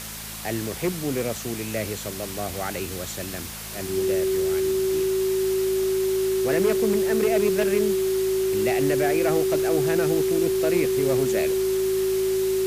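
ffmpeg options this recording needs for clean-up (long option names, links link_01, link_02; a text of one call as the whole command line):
ffmpeg -i in.wav -af "adeclick=threshold=4,bandreject=frequency=53.8:width_type=h:width=4,bandreject=frequency=107.6:width_type=h:width=4,bandreject=frequency=161.4:width_type=h:width=4,bandreject=frequency=215.2:width_type=h:width=4,bandreject=frequency=380:width=30,afftdn=noise_reduction=30:noise_floor=-33" out.wav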